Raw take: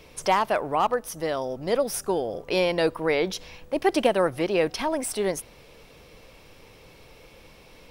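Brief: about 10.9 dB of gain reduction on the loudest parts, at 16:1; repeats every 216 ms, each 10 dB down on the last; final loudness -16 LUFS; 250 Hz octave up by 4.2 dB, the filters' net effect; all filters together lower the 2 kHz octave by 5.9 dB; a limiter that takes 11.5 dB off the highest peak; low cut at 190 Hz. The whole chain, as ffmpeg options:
-af "highpass=190,equalizer=f=250:t=o:g=7.5,equalizer=f=2000:t=o:g=-7.5,acompressor=threshold=0.0562:ratio=16,alimiter=level_in=1.33:limit=0.0631:level=0:latency=1,volume=0.75,aecho=1:1:216|432|648|864:0.316|0.101|0.0324|0.0104,volume=9.44"

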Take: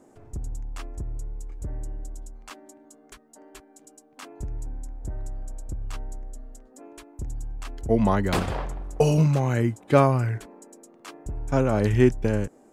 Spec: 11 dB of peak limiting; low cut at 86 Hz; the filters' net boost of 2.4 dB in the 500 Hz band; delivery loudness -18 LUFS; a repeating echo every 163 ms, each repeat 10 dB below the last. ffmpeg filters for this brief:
-af "highpass=86,equalizer=f=500:t=o:g=3,alimiter=limit=0.224:level=0:latency=1,aecho=1:1:163|326|489|652:0.316|0.101|0.0324|0.0104,volume=2.24"

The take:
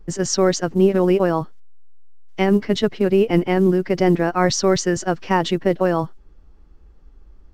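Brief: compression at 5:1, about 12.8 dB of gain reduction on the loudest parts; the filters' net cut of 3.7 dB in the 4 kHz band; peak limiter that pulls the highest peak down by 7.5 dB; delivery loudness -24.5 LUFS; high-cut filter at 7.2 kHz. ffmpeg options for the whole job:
-af "lowpass=7200,equalizer=f=4000:t=o:g=-4.5,acompressor=threshold=0.0501:ratio=5,volume=2.37,alimiter=limit=0.224:level=0:latency=1"

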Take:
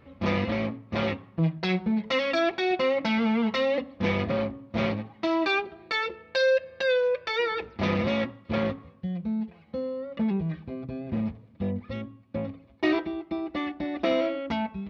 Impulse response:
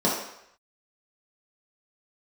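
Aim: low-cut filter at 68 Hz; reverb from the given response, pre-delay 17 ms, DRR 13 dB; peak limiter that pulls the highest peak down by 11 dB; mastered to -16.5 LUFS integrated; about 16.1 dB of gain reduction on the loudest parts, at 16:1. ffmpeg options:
-filter_complex "[0:a]highpass=68,acompressor=threshold=0.0158:ratio=16,alimiter=level_in=2.66:limit=0.0631:level=0:latency=1,volume=0.376,asplit=2[s0][s1];[1:a]atrim=start_sample=2205,adelay=17[s2];[s1][s2]afir=irnorm=-1:irlink=0,volume=0.0398[s3];[s0][s3]amix=inputs=2:normalize=0,volume=18.8"

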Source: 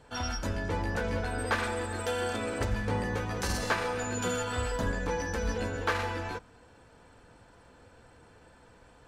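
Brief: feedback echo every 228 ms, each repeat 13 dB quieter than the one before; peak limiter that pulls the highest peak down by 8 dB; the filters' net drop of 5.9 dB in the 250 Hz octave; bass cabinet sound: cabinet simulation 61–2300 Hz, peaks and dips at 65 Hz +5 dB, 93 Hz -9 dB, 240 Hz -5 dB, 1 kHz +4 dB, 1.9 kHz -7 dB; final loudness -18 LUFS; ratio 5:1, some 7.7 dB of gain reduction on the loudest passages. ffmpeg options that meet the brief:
-af "equalizer=f=250:t=o:g=-4.5,acompressor=threshold=0.0224:ratio=5,alimiter=level_in=2.11:limit=0.0631:level=0:latency=1,volume=0.473,highpass=f=61:w=0.5412,highpass=f=61:w=1.3066,equalizer=f=65:t=q:w=4:g=5,equalizer=f=93:t=q:w=4:g=-9,equalizer=f=240:t=q:w=4:g=-5,equalizer=f=1000:t=q:w=4:g=4,equalizer=f=1900:t=q:w=4:g=-7,lowpass=f=2300:w=0.5412,lowpass=f=2300:w=1.3066,aecho=1:1:228|456|684:0.224|0.0493|0.0108,volume=14.1"

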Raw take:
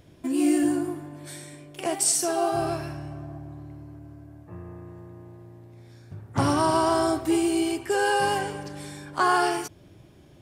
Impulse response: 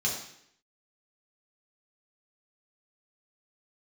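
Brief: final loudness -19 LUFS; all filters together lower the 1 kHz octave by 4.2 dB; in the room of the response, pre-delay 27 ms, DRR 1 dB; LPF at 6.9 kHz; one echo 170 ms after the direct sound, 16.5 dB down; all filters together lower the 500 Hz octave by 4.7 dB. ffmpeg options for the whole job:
-filter_complex "[0:a]lowpass=6900,equalizer=f=500:t=o:g=-6.5,equalizer=f=1000:t=o:g=-3,aecho=1:1:170:0.15,asplit=2[s0][s1];[1:a]atrim=start_sample=2205,adelay=27[s2];[s1][s2]afir=irnorm=-1:irlink=0,volume=0.398[s3];[s0][s3]amix=inputs=2:normalize=0,volume=2.11"

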